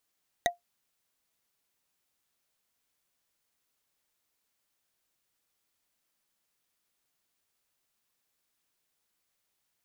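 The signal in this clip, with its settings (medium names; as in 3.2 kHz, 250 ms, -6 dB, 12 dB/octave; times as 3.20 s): wood hit bar, lowest mode 699 Hz, decay 0.14 s, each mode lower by 1 dB, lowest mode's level -19 dB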